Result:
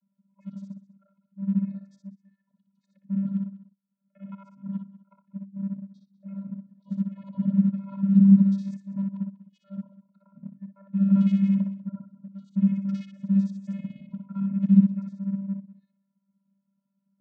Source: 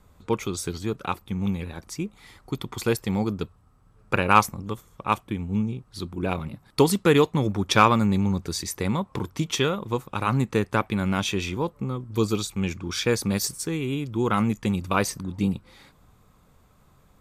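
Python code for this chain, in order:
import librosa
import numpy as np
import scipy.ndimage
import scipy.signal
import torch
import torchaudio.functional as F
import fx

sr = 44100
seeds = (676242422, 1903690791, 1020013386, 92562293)

p1 = fx.local_reverse(x, sr, ms=56.0)
p2 = fx.auto_swell(p1, sr, attack_ms=593.0)
p3 = fx.peak_eq(p2, sr, hz=180.0, db=10.0, octaves=0.39)
p4 = fx.echo_feedback(p3, sr, ms=61, feedback_pct=18, wet_db=-5.0)
p5 = fx.vocoder(p4, sr, bands=16, carrier='square', carrier_hz=196.0)
p6 = fx.noise_reduce_blind(p5, sr, reduce_db=14)
p7 = np.sign(p6) * np.maximum(np.abs(p6) - 10.0 ** (-41.0 / 20.0), 0.0)
p8 = p6 + (p7 * 10.0 ** (-6.5 / 20.0))
p9 = fx.high_shelf(p8, sr, hz=3300.0, db=-11.0)
y = p9 + 10.0 ** (-18.0 / 20.0) * np.pad(p9, (int(194 * sr / 1000.0), 0))[:len(p9)]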